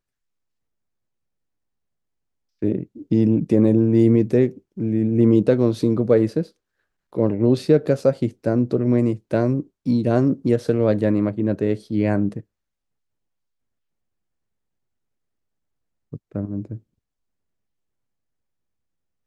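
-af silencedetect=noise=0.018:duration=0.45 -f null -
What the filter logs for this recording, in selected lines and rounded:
silence_start: 0.00
silence_end: 2.62 | silence_duration: 2.62
silence_start: 6.46
silence_end: 7.13 | silence_duration: 0.67
silence_start: 12.41
silence_end: 16.13 | silence_duration: 3.72
silence_start: 16.77
silence_end: 19.27 | silence_duration: 2.49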